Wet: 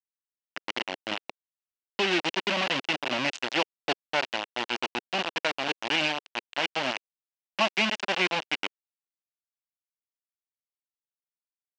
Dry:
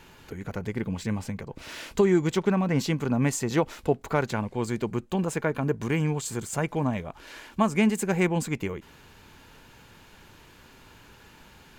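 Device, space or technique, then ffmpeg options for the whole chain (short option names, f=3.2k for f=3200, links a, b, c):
hand-held game console: -af "acrusher=bits=3:mix=0:aa=0.000001,highpass=410,equalizer=f=440:t=q:w=4:g=-10,equalizer=f=1.2k:t=q:w=4:g=-4,equalizer=f=2.8k:t=q:w=4:g=9,lowpass=f=5.2k:w=0.5412,lowpass=f=5.2k:w=1.3066"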